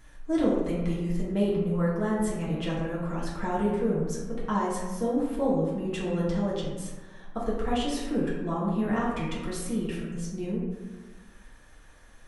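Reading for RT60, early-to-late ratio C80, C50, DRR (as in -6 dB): 1.3 s, 3.5 dB, 0.5 dB, -7.5 dB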